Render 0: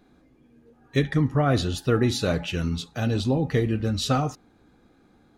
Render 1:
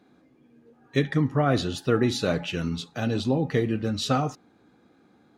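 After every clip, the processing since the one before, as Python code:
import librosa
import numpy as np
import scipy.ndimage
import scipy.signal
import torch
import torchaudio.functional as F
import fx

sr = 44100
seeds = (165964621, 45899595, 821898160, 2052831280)

y = scipy.signal.sosfilt(scipy.signal.butter(2, 130.0, 'highpass', fs=sr, output='sos'), x)
y = fx.high_shelf(y, sr, hz=8900.0, db=-7.5)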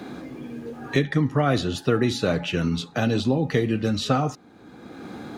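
y = fx.band_squash(x, sr, depth_pct=70)
y = y * 10.0 ** (2.0 / 20.0)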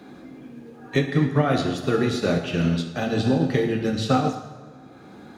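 y = fx.rev_plate(x, sr, seeds[0], rt60_s=2.0, hf_ratio=0.65, predelay_ms=0, drr_db=2.0)
y = fx.upward_expand(y, sr, threshold_db=-32.0, expansion=1.5)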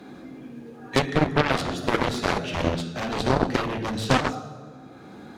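y = fx.cheby_harmonics(x, sr, harmonics=(3, 5, 7), levels_db=(-14, -18, -11), full_scale_db=-6.5)
y = y * 10.0 ** (1.5 / 20.0)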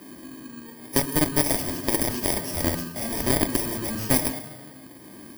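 y = fx.bit_reversed(x, sr, seeds[1], block=32)
y = y + 0.34 * np.pad(y, (int(3.2 * sr / 1000.0), 0))[:len(y)]
y = y * 10.0 ** (-1.0 / 20.0)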